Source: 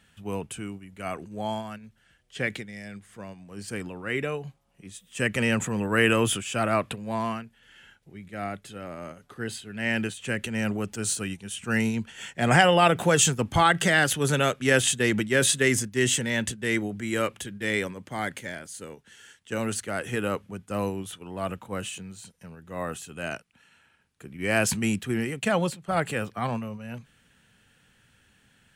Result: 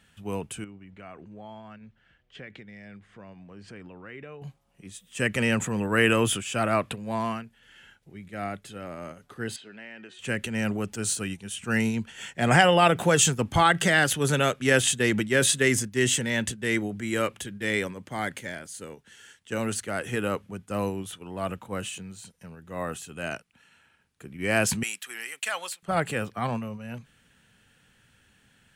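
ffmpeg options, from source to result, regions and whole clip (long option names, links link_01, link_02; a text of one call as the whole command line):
ffmpeg -i in.wav -filter_complex "[0:a]asettb=1/sr,asplit=3[link_01][link_02][link_03];[link_01]atrim=end=0.644[link_04];[link_02]atrim=start=0.64:end=4.42,asetpts=PTS-STARTPTS,afade=type=in:duration=0.004:curve=qsin,afade=type=out:start_time=3.776:duration=0.004:curve=qsin,lowpass=3200,acompressor=threshold=-43dB:ratio=3:attack=3.2:release=140:knee=1:detection=peak[link_05];[link_03]atrim=start=4.416[link_06];[link_04][link_05]acrossfade=duration=0.004:curve1=hsin:curve2=qsin[link_07];[link_07][link_06]acrossfade=duration=0.004:curve1=qsin:curve2=hsin,asettb=1/sr,asplit=3[link_08][link_09][link_10];[link_08]atrim=end=9.564[link_11];[link_09]atrim=start=9.56:end=10.19,asetpts=PTS-STARTPTS,afade=type=in:duration=0.004:curve=qsin,afade=type=out:start_time=0.626:duration=0.004:curve=qsin,bandreject=frequency=368.6:width_type=h:width=4,bandreject=frequency=737.2:width_type=h:width=4,bandreject=frequency=1105.8:width_type=h:width=4,bandreject=frequency=1474.4:width_type=h:width=4,bandreject=frequency=1843:width_type=h:width=4,bandreject=frequency=2211.6:width_type=h:width=4,bandreject=frequency=2580.2:width_type=h:width=4,bandreject=frequency=2948.8:width_type=h:width=4,bandreject=frequency=3317.4:width_type=h:width=4,bandreject=frequency=3686:width_type=h:width=4,bandreject=frequency=4054.6:width_type=h:width=4,bandreject=frequency=4423.2:width_type=h:width=4,bandreject=frequency=4791.8:width_type=h:width=4,bandreject=frequency=5160.4:width_type=h:width=4,bandreject=frequency=5529:width_type=h:width=4,bandreject=frequency=5897.6:width_type=h:width=4,bandreject=frequency=6266.2:width_type=h:width=4,bandreject=frequency=6634.8:width_type=h:width=4,bandreject=frequency=7003.4:width_type=h:width=4,bandreject=frequency=7372:width_type=h:width=4,bandreject=frequency=7740.6:width_type=h:width=4,bandreject=frequency=8109.2:width_type=h:width=4,bandreject=frequency=8477.8:width_type=h:width=4,bandreject=frequency=8846.4:width_type=h:width=4,bandreject=frequency=9215:width_type=h:width=4,bandreject=frequency=9583.6:width_type=h:width=4,bandreject=frequency=9952.2:width_type=h:width=4,bandreject=frequency=10320.8:width_type=h:width=4,bandreject=frequency=10689.4:width_type=h:width=4,bandreject=frequency=11058:width_type=h:width=4,bandreject=frequency=11426.6:width_type=h:width=4,bandreject=frequency=11795.2:width_type=h:width=4,bandreject=frequency=12163.8:width_type=h:width=4,acompressor=threshold=-37dB:ratio=16:attack=3.2:release=140:knee=1:detection=peak,highpass=280,lowpass=3900[link_12];[link_10]atrim=start=10.186[link_13];[link_11][link_12]acrossfade=duration=0.004:curve1=hsin:curve2=qsin[link_14];[link_14][link_13]acrossfade=duration=0.004:curve1=qsin:curve2=hsin,asettb=1/sr,asplit=3[link_15][link_16][link_17];[link_15]atrim=end=24.834[link_18];[link_16]atrim=start=24.83:end=25.83,asetpts=PTS-STARTPTS,afade=type=in:duration=0.004:curve=qsin,afade=type=out:start_time=0.996:duration=0.004:curve=qsin,highpass=1200,highshelf=frequency=8600:gain=7[link_19];[link_17]atrim=start=25.826[link_20];[link_18][link_19]acrossfade=duration=0.004:curve1=hsin:curve2=qsin[link_21];[link_21][link_20]acrossfade=duration=0.004:curve1=qsin:curve2=hsin" out.wav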